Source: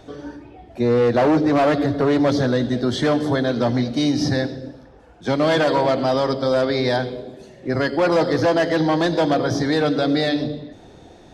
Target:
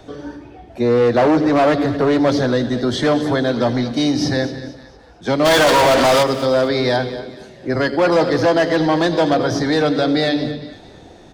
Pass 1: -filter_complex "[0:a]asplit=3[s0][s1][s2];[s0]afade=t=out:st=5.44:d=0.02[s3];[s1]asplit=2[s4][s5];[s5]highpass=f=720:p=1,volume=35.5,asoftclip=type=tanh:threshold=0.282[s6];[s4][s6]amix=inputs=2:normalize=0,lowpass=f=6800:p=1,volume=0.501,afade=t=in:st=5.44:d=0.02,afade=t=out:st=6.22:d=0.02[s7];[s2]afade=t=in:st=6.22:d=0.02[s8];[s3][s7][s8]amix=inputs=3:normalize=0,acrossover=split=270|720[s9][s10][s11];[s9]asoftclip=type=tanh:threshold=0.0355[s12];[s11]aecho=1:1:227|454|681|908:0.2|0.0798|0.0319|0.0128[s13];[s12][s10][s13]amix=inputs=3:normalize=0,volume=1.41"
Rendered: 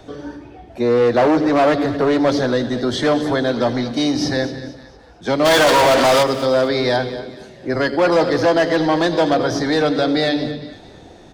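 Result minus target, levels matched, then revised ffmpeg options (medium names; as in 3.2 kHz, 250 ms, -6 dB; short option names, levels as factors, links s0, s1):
saturation: distortion +6 dB
-filter_complex "[0:a]asplit=3[s0][s1][s2];[s0]afade=t=out:st=5.44:d=0.02[s3];[s1]asplit=2[s4][s5];[s5]highpass=f=720:p=1,volume=35.5,asoftclip=type=tanh:threshold=0.282[s6];[s4][s6]amix=inputs=2:normalize=0,lowpass=f=6800:p=1,volume=0.501,afade=t=in:st=5.44:d=0.02,afade=t=out:st=6.22:d=0.02[s7];[s2]afade=t=in:st=6.22:d=0.02[s8];[s3][s7][s8]amix=inputs=3:normalize=0,acrossover=split=270|720[s9][s10][s11];[s9]asoftclip=type=tanh:threshold=0.075[s12];[s11]aecho=1:1:227|454|681|908:0.2|0.0798|0.0319|0.0128[s13];[s12][s10][s13]amix=inputs=3:normalize=0,volume=1.41"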